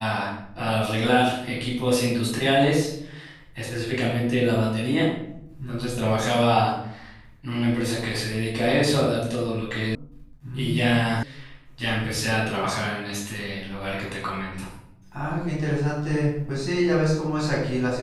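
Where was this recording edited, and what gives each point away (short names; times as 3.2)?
9.95 sound cut off
11.23 sound cut off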